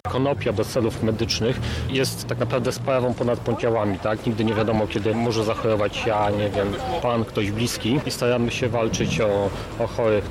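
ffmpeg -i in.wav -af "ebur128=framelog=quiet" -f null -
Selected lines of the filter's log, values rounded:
Integrated loudness:
  I:         -22.9 LUFS
  Threshold: -32.9 LUFS
Loudness range:
  LRA:         0.8 LU
  Threshold: -42.9 LUFS
  LRA low:   -23.3 LUFS
  LRA high:  -22.5 LUFS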